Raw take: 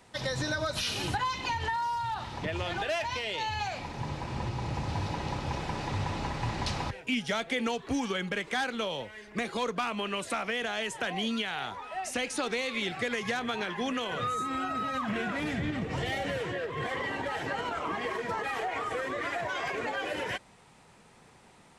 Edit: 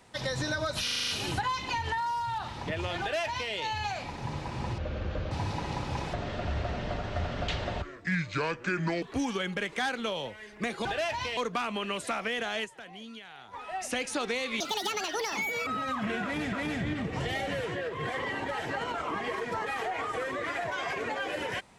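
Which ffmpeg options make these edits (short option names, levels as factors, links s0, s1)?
-filter_complex "[0:a]asplit=18[s0][s1][s2][s3][s4][s5][s6][s7][s8][s9][s10][s11][s12][s13][s14][s15][s16][s17];[s0]atrim=end=0.882[s18];[s1]atrim=start=0.838:end=0.882[s19];[s2]atrim=start=0.838:end=0.882[s20];[s3]atrim=start=0.838:end=0.882[s21];[s4]atrim=start=0.838:end=0.882[s22];[s5]atrim=start=0.838:end=0.882[s23];[s6]atrim=start=0.838:end=4.544[s24];[s7]atrim=start=4.54:end=4.87,asetpts=PTS-STARTPTS,asetrate=27342,aresample=44100[s25];[s8]atrim=start=4.866:end=5.694[s26];[s9]atrim=start=5.69:end=7.77,asetpts=PTS-STARTPTS,asetrate=31752,aresample=44100[s27];[s10]atrim=start=7.766:end=9.602[s28];[s11]atrim=start=2.758:end=3.282[s29];[s12]atrim=start=9.598:end=11.03,asetpts=PTS-STARTPTS,afade=t=out:st=1.272:d=0.16:c=exp:silence=0.211349[s30];[s13]atrim=start=11.03:end=11.61,asetpts=PTS-STARTPTS,volume=0.211[s31];[s14]atrim=start=11.61:end=12.834,asetpts=PTS-STARTPTS,afade=t=in:d=0.16:c=exp:silence=0.211349[s32];[s15]atrim=start=12.83:end=14.73,asetpts=PTS-STARTPTS,asetrate=78498,aresample=44100,atrim=end_sample=47073,asetpts=PTS-STARTPTS[s33];[s16]atrim=start=14.726:end=15.592[s34];[s17]atrim=start=15.298[s35];[s18][s19]acrossfade=d=0.004:c1=hsin:c2=hsin[s36];[s36][s20]acrossfade=d=0.004:c1=hsin:c2=hsin[s37];[s37][s21]acrossfade=d=0.004:c1=hsin:c2=hsin[s38];[s38][s22]acrossfade=d=0.004:c1=hsin:c2=hsin[s39];[s39][s23]acrossfade=d=0.004:c1=hsin:c2=hsin[s40];[s40][s24]acrossfade=d=0.004:c1=hsin:c2=hsin[s41];[s41][s25]acrossfade=d=0.004:c1=hsin:c2=hsin[s42];[s42][s26]acrossfade=d=0.004:c1=hsin:c2=hsin[s43];[s43][s27]acrossfade=d=0.004:c1=hsin:c2=hsin[s44];[s44][s28]acrossfade=d=0.004:c1=hsin:c2=hsin[s45];[s45][s29]acrossfade=d=0.004:c1=hsin:c2=hsin[s46];[s30][s31][s32]concat=n=3:v=0:a=1[s47];[s46][s47]acrossfade=d=0.004:c1=hsin:c2=hsin[s48];[s48][s33]acrossfade=d=0.004:c1=hsin:c2=hsin[s49];[s49][s34]acrossfade=d=0.004:c1=hsin:c2=hsin[s50];[s50][s35]acrossfade=d=0.004:c1=hsin:c2=hsin"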